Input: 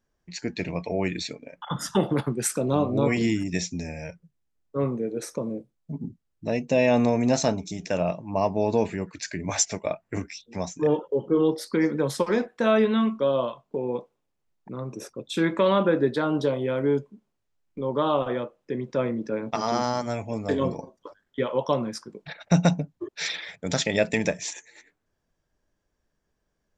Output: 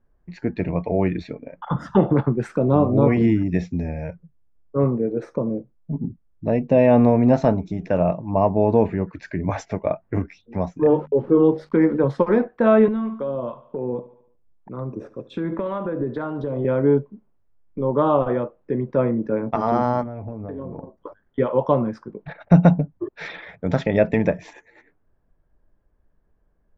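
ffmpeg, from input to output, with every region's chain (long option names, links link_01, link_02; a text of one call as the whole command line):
ffmpeg -i in.wav -filter_complex "[0:a]asettb=1/sr,asplit=3[link_01][link_02][link_03];[link_01]atrim=end=10.814[link_04];[link_02]atrim=start=10.81:end=12.04,asetpts=PTS-STARTPTS,afade=type=in:duration=0.004:curve=qsin,afade=type=out:start_time=1.226:duration=0.004:curve=qsin,aeval=exprs='val(0)*gte(abs(val(0)),0.00473)':channel_layout=same,bandreject=frequency=50:width_type=h:width=6,bandreject=frequency=100:width_type=h:width=6,bandreject=frequency=150:width_type=h:width=6,bandreject=frequency=200:width_type=h:width=6,bandreject=frequency=250:width_type=h:width=6[link_05];[link_03]atrim=start=12.036[link_06];[link_04][link_05]acrossfade=duration=0.004:curve1=hsin:curve2=qsin[link_07];[link_07][link_06]acrossfade=duration=0.004:curve1=qsin:curve2=hsin,asettb=1/sr,asplit=3[link_08][link_09][link_10];[link_08]atrim=end=12.884[link_11];[link_09]atrim=start=12.88:end=16.65,asetpts=PTS-STARTPTS,afade=type=in:duration=0.004:curve=qsin,afade=type=out:start_time=3.766:duration=0.004:curve=qsin,acompressor=threshold=-25dB:ratio=10:attack=3.2:release=140:knee=1:detection=peak,aecho=1:1:72|144|216|288|360:0.119|0.0642|0.0347|0.0187|0.0101,atrim=end_sample=166257,acrossover=split=560[link_12][link_13];[link_12]aeval=exprs='val(0)*(1-0.5/2+0.5/2*cos(2*PI*1.9*n/s))':channel_layout=same[link_14];[link_13]aeval=exprs='val(0)*(1-0.5/2-0.5/2*cos(2*PI*1.9*n/s))':channel_layout=same[link_15];[link_14][link_15]amix=inputs=2:normalize=0[link_16];[link_10]atrim=start=16.646[link_17];[link_11][link_16]acrossfade=duration=0.004:curve1=hsin:curve2=qsin[link_18];[link_18][link_17]acrossfade=duration=0.004:curve1=qsin:curve2=hsin,asettb=1/sr,asplit=3[link_19][link_20][link_21];[link_19]atrim=end=20.034[link_22];[link_20]atrim=start=20.03:end=20.98,asetpts=PTS-STARTPTS,afade=type=in:duration=0.004:curve=qsin,afade=type=out:start_time=0.946:duration=0.004:curve=qsin,lowpass=frequency=1100:poles=1,acompressor=threshold=-34dB:ratio=12:attack=3.2:release=140:knee=1:detection=peak[link_23];[link_21]atrim=start=20.976[link_24];[link_22][link_23]acrossfade=duration=0.004:curve1=hsin:curve2=qsin[link_25];[link_25][link_24]acrossfade=duration=0.004:curve1=qsin:curve2=hsin,lowpass=1400,lowshelf=frequency=67:gain=12,volume=5.5dB" out.wav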